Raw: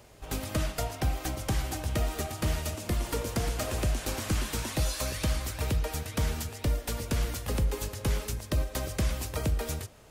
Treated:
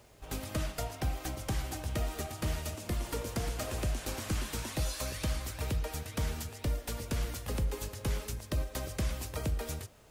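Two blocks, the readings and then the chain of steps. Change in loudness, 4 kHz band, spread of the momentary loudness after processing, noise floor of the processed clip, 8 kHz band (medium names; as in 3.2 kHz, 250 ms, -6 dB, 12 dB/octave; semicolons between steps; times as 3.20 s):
-4.5 dB, -4.5 dB, 3 LU, -51 dBFS, -4.5 dB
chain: bit crusher 11-bit; trim -4.5 dB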